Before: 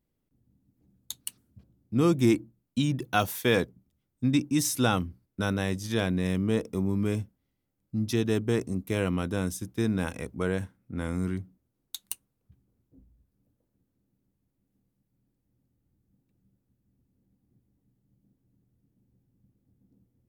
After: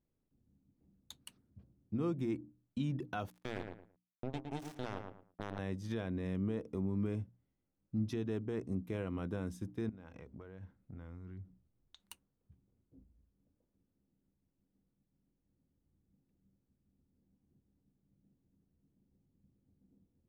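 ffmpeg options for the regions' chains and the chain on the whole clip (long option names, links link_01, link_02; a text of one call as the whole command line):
ffmpeg -i in.wav -filter_complex "[0:a]asettb=1/sr,asplit=3[link_01][link_02][link_03];[link_01]atrim=end=3.304[link_04];[link_02]atrim=start=3.3:end=5.59,asetpts=PTS-STARTPTS,afade=type=in:duration=0.004:curve=qsin,afade=type=out:start_time=2.286:duration=0.004:curve=qsin,acompressor=threshold=-29dB:ratio=2:attack=3.2:release=140:knee=1:detection=peak,acrusher=bits=3:mix=0:aa=0.5,asplit=2[link_05][link_06];[link_06]adelay=111,lowpass=frequency=2000:poles=1,volume=-7.5dB,asplit=2[link_07][link_08];[link_08]adelay=111,lowpass=frequency=2000:poles=1,volume=0.22,asplit=2[link_09][link_10];[link_10]adelay=111,lowpass=frequency=2000:poles=1,volume=0.22[link_11];[link_05][link_07][link_09][link_11]amix=inputs=4:normalize=0,atrim=end_sample=100989[link_12];[link_03]atrim=start=5.586[link_13];[link_04][link_12]acrossfade=duration=0.004:curve1=hsin:curve2=qsin[link_14];[link_14][link_13]acrossfade=duration=0.004:curve1=qsin:curve2=hsin,asettb=1/sr,asplit=3[link_15][link_16][link_17];[link_15]atrim=end=9.894[link_18];[link_16]atrim=start=9.89:end=12,asetpts=PTS-STARTPTS,afade=type=in:duration=0.004:curve=qsin,afade=type=out:start_time=2.106:duration=0.004:curve=qsin,lowpass=frequency=6700:width=0.5412,lowpass=frequency=6700:width=1.3066,acompressor=threshold=-41dB:ratio=16:attack=3.2:release=140:knee=1:detection=peak,asubboost=boost=4.5:cutoff=130[link_19];[link_17]atrim=start=11.996[link_20];[link_18][link_19]acrossfade=duration=0.004:curve1=hsin:curve2=qsin[link_21];[link_21][link_20]acrossfade=duration=0.004:curve1=qsin:curve2=hsin,lowpass=frequency=1400:poles=1,alimiter=limit=-23.5dB:level=0:latency=1:release=214,bandreject=frequency=60:width_type=h:width=6,bandreject=frequency=120:width_type=h:width=6,bandreject=frequency=180:width_type=h:width=6,bandreject=frequency=240:width_type=h:width=6,bandreject=frequency=300:width_type=h:width=6,volume=-3.5dB" out.wav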